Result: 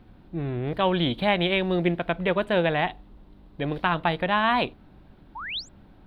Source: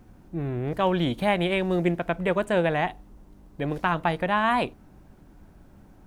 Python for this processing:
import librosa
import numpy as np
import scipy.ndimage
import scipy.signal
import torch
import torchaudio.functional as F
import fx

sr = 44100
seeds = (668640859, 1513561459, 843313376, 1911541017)

y = fx.spec_paint(x, sr, seeds[0], shape='rise', start_s=5.35, length_s=0.34, low_hz=820.0, high_hz=8000.0, level_db=-36.0)
y = fx.high_shelf_res(y, sr, hz=5000.0, db=-10.0, q=3.0)